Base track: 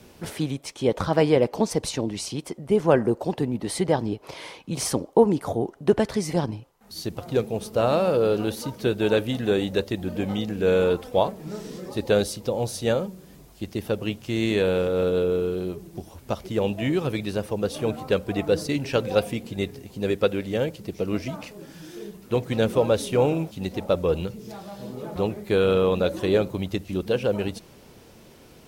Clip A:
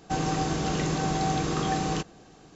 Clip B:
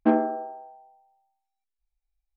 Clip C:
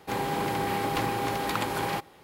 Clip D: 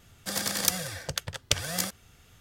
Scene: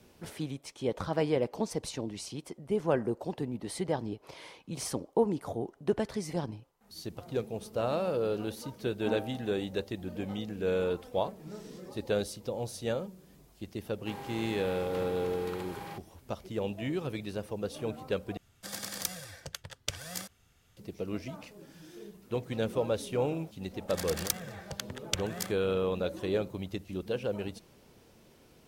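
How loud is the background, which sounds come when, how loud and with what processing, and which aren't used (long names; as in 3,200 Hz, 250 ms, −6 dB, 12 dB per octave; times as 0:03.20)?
base track −9.5 dB
0:09.00: mix in B −16 dB
0:13.98: mix in C −16.5 dB + harmonic and percussive parts rebalanced harmonic +4 dB
0:18.37: overwrite with D −9.5 dB
0:23.62: mix in D −6.5 dB + adaptive Wiener filter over 9 samples
not used: A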